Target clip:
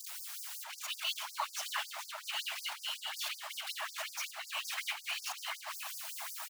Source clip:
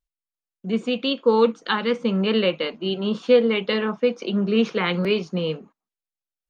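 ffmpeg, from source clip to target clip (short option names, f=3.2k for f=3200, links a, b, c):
-filter_complex "[0:a]aeval=exprs='val(0)+0.5*0.1*sgn(val(0))':c=same,asplit=2[a][b];[b]adelay=695,lowpass=f=2.5k:p=1,volume=-6dB,asplit=2[c][d];[d]adelay=695,lowpass=f=2.5k:p=1,volume=0.53,asplit=2[e][f];[f]adelay=695,lowpass=f=2.5k:p=1,volume=0.53,asplit=2[g][h];[h]adelay=695,lowpass=f=2.5k:p=1,volume=0.53,asplit=2[i][j];[j]adelay=695,lowpass=f=2.5k:p=1,volume=0.53,asplit=2[k][l];[l]adelay=695,lowpass=f=2.5k:p=1,volume=0.53,asplit=2[m][n];[n]adelay=695,lowpass=f=2.5k:p=1,volume=0.53[o];[c][e][g][i][k][m][o]amix=inputs=7:normalize=0[p];[a][p]amix=inputs=2:normalize=0,afftfilt=real='hypot(re,im)*cos(2*PI*random(0))':imag='hypot(re,im)*sin(2*PI*random(1))':win_size=512:overlap=0.75,afftfilt=real='re*gte(b*sr/1024,600*pow(4700/600,0.5+0.5*sin(2*PI*5.4*pts/sr)))':imag='im*gte(b*sr/1024,600*pow(4700/600,0.5+0.5*sin(2*PI*5.4*pts/sr)))':win_size=1024:overlap=0.75,volume=-5.5dB"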